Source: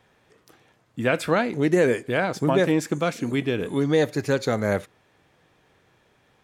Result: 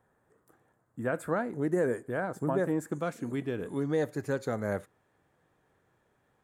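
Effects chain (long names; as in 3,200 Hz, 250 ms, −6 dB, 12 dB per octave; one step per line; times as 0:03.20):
flat-topped bell 3,600 Hz −16 dB, from 0:02.91 −8.5 dB
level −8.5 dB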